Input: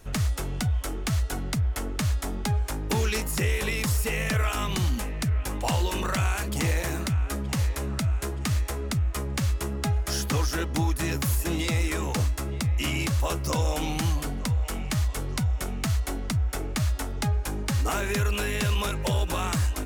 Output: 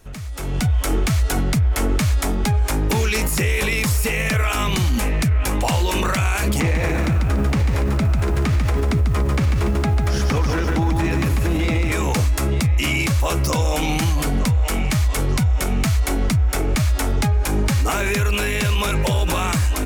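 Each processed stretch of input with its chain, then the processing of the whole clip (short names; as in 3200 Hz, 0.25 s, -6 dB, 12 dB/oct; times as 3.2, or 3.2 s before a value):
6.6–11.92 LPF 1800 Hz 6 dB/oct + bell 110 Hz -3.5 dB 0.43 oct + lo-fi delay 0.144 s, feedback 35%, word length 9-bit, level -4.5 dB
whole clip: dynamic EQ 2300 Hz, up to +6 dB, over -52 dBFS, Q 7.2; limiter -27.5 dBFS; AGC gain up to 15.5 dB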